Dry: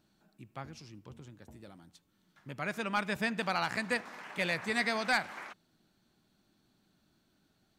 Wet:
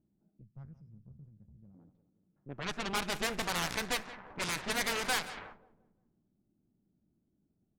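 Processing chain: 0.83–1.58 doubler 28 ms -10 dB; added harmonics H 7 -10 dB, 8 -9 dB, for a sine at -19 dBFS; on a send: feedback echo 0.177 s, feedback 51%, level -15.5 dB; on the sum: low-pass opened by the level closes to 340 Hz, open at -26 dBFS; 0.41–1.75 spectral gain 220–4800 Hz -17 dB; gain -4 dB

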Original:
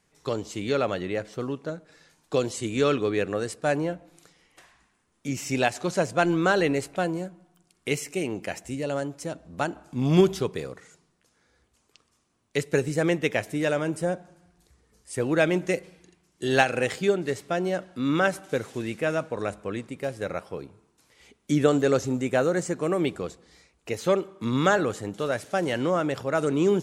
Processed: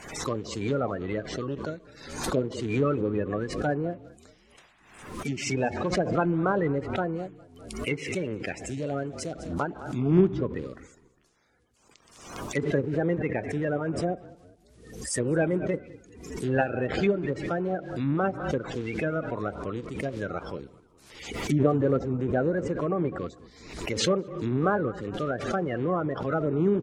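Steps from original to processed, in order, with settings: bin magnitudes rounded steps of 30 dB; treble ducked by the level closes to 1200 Hz, closed at -22.5 dBFS; on a send: frequency-shifting echo 0.203 s, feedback 44%, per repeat -37 Hz, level -20.5 dB; on the sum: backwards sustainer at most 68 dB/s; gain -1.5 dB

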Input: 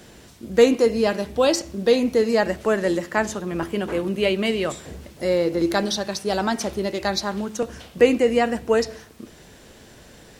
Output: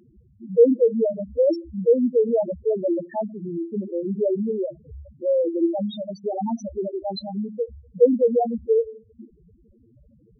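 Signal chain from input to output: low-pass opened by the level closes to 1800 Hz, open at -15 dBFS; loudest bins only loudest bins 2; gain +2 dB

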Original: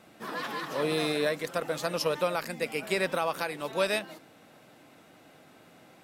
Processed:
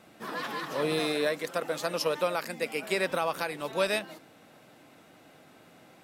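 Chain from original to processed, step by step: 0.99–3.11 HPF 180 Hz 12 dB/oct

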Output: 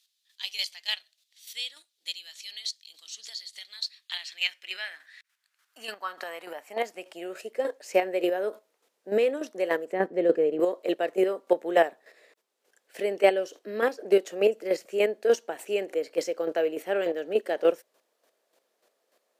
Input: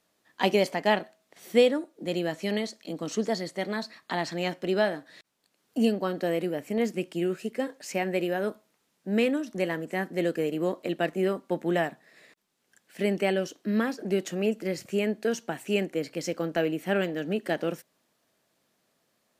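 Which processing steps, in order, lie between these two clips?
9.92–10.6 RIAA curve playback; chopper 3.4 Hz, depth 60%, duty 20%; high-pass sweep 3700 Hz -> 470 Hz, 3.83–7.76; gain +3.5 dB

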